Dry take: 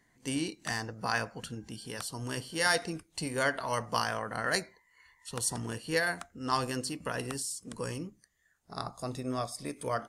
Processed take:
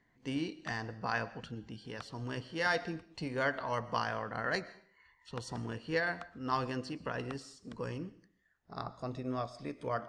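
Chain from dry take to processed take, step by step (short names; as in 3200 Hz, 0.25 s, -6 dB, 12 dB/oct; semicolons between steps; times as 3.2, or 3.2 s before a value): air absorption 180 m; reverb RT60 0.50 s, pre-delay 80 ms, DRR 18 dB; gain -2 dB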